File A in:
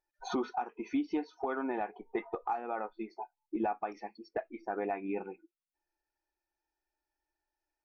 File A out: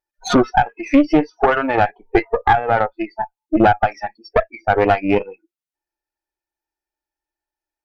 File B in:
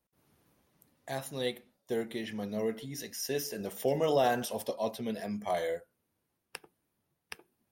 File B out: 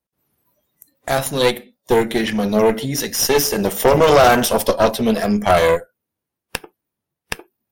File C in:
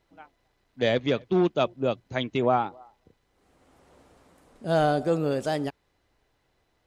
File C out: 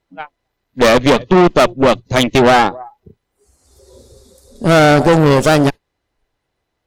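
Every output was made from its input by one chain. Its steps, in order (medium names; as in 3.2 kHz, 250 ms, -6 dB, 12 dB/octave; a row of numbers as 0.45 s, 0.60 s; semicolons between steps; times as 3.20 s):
spectral noise reduction 21 dB; one-sided clip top -32.5 dBFS; valve stage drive 30 dB, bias 0.8; peak normalisation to -1.5 dBFS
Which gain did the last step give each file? +25.5 dB, +24.0 dB, +24.5 dB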